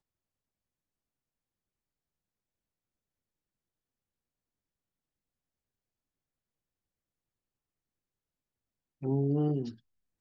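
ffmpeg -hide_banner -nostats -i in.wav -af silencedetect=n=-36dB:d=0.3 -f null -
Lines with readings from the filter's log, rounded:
silence_start: 0.00
silence_end: 9.03 | silence_duration: 9.03
silence_start: 9.70
silence_end: 10.21 | silence_duration: 0.51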